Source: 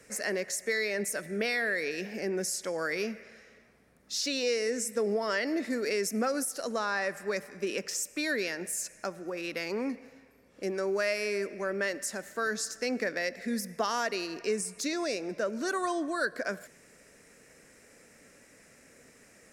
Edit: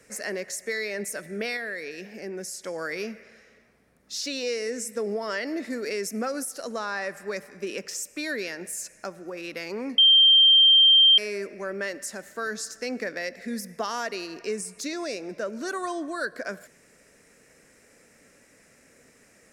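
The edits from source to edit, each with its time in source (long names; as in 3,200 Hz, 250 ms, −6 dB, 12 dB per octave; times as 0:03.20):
0:01.57–0:02.64: clip gain −3.5 dB
0:09.98–0:11.18: beep over 3,160 Hz −12.5 dBFS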